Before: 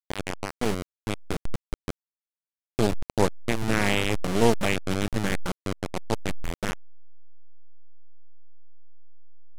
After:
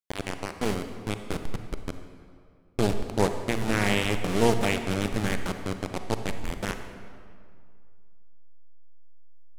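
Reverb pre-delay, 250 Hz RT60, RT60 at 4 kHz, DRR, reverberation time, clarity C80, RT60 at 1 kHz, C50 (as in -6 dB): 35 ms, 2.2 s, 1.5 s, 7.5 dB, 2.2 s, 9.0 dB, 2.2 s, 8.0 dB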